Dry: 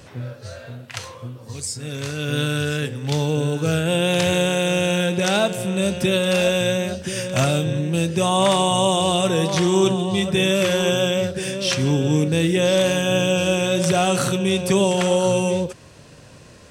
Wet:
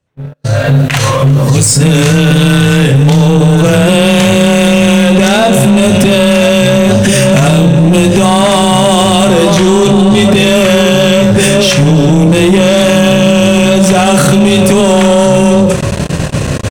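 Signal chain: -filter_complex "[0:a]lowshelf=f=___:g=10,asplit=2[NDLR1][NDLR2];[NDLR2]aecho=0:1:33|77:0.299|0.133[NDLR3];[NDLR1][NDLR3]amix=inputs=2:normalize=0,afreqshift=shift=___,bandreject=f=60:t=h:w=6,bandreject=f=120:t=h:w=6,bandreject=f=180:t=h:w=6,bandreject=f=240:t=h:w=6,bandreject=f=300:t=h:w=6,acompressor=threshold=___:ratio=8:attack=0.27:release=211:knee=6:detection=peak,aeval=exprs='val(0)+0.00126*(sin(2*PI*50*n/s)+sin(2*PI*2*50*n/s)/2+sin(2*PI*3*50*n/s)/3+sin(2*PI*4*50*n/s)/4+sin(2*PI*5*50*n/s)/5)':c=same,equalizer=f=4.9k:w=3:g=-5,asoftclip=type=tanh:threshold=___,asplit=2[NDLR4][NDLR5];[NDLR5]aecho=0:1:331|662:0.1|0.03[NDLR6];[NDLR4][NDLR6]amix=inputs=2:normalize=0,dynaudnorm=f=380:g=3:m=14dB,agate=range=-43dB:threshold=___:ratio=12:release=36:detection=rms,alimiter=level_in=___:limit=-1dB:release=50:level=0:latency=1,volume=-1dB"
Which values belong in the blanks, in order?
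120, 17, -24dB, -28dB, -29dB, 17dB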